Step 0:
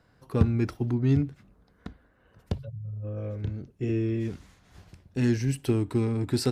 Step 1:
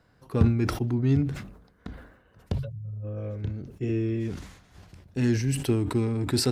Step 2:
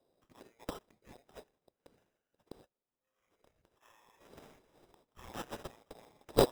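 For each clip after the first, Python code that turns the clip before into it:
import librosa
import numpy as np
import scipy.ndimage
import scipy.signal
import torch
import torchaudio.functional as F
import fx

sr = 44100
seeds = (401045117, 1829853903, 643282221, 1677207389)

y1 = fx.sustainer(x, sr, db_per_s=76.0)
y2 = fx.ladder_bandpass(y1, sr, hz=5000.0, resonance_pct=85)
y2 = fx.sample_hold(y2, sr, seeds[0], rate_hz=4400.0, jitter_pct=0)
y2 = F.gain(torch.from_numpy(y2), 2.0).numpy()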